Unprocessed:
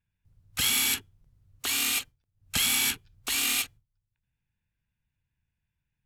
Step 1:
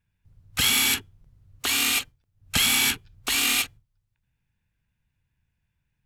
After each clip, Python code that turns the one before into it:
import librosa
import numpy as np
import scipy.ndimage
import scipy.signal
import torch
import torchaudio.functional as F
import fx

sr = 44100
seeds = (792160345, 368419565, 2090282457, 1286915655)

y = fx.high_shelf(x, sr, hz=4800.0, db=-5.0)
y = F.gain(torch.from_numpy(y), 6.5).numpy()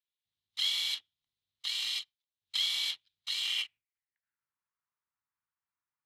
y = fx.lower_of_two(x, sr, delay_ms=0.97)
y = fx.filter_sweep_bandpass(y, sr, from_hz=3700.0, to_hz=1200.0, start_s=3.39, end_s=4.53, q=4.5)